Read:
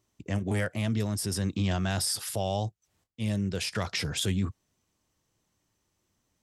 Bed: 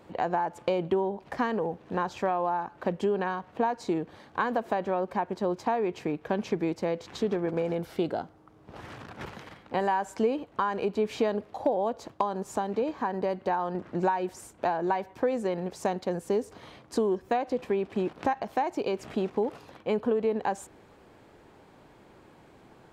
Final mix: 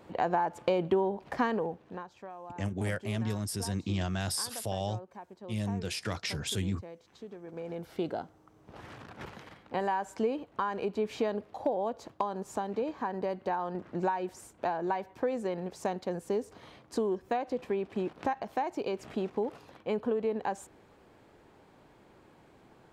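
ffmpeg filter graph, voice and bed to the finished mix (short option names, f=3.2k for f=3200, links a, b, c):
-filter_complex "[0:a]adelay=2300,volume=-4dB[a];[1:a]volume=13dB,afade=t=out:st=1.47:d=0.6:silence=0.141254,afade=t=in:st=7.43:d=0.65:silence=0.211349[b];[a][b]amix=inputs=2:normalize=0"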